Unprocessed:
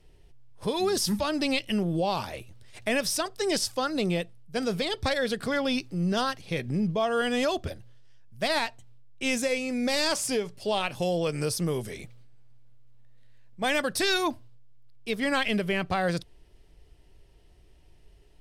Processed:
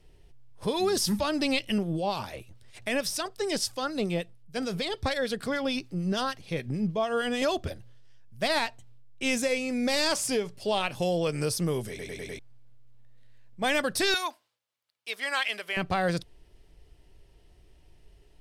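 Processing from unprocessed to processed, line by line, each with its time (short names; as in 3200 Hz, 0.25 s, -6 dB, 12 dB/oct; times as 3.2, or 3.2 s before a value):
1.78–7.42 harmonic tremolo 6.7 Hz, depth 50%, crossover 1500 Hz
11.89 stutter in place 0.10 s, 5 plays
14.14–15.77 HPF 880 Hz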